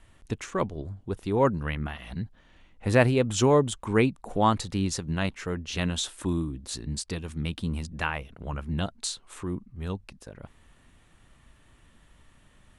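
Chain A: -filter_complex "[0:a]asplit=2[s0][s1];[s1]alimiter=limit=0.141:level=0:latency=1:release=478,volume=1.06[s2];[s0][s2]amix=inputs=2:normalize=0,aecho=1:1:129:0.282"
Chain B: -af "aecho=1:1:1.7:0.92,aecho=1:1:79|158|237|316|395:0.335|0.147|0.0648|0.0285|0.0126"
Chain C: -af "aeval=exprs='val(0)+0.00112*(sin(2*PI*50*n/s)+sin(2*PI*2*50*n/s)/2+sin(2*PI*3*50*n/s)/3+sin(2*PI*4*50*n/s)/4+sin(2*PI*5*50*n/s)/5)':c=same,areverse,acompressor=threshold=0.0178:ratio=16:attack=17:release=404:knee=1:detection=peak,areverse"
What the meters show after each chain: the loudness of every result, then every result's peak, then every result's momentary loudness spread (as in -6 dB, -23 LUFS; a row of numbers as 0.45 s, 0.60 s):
-23.5 LUFS, -25.5 LUFS, -40.5 LUFS; -3.0 dBFS, -3.5 dBFS, -20.0 dBFS; 12 LU, 15 LU, 20 LU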